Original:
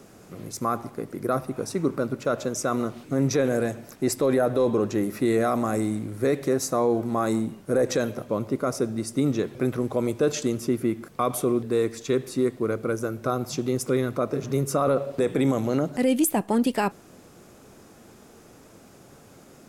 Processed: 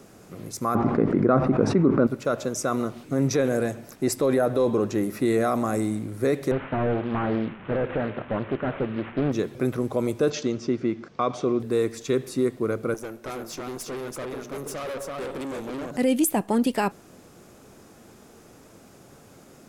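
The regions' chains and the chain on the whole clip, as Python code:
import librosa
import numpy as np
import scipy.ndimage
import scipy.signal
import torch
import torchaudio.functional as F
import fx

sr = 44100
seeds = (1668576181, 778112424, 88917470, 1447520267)

y = fx.chain(x, sr, fx.lowpass(hz=2000.0, slope=12),
    fx.peak_eq(hz=230.0, db=5.0, octaves=1.2),
    fx.env_flatten(amount_pct=70), at=(0.75, 2.07))
y = fx.chain(y, sr, fx.delta_mod(bps=16000, step_db=-38.0),
    fx.peak_eq(hz=1500.0, db=5.0, octaves=1.4),
    fx.doppler_dist(depth_ms=0.54), at=(6.51, 9.32))
y = fx.chain(y, sr, fx.steep_lowpass(hz=6100.0, slope=36),
    fx.low_shelf(hz=80.0, db=-8.5), at=(10.3, 11.6))
y = fx.chain(y, sr, fx.highpass(hz=270.0, slope=12),
    fx.echo_single(ms=332, db=-4.5),
    fx.tube_stage(drive_db=30.0, bias=0.6), at=(12.94, 15.91))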